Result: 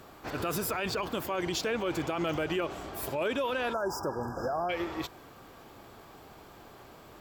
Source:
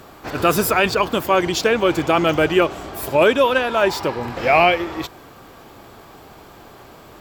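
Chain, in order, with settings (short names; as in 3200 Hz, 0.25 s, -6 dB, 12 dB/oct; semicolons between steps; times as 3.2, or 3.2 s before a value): limiter -14 dBFS, peak gain reduction 9.5 dB; spectral delete 3.73–4.7, 1700–4800 Hz; gain -8.5 dB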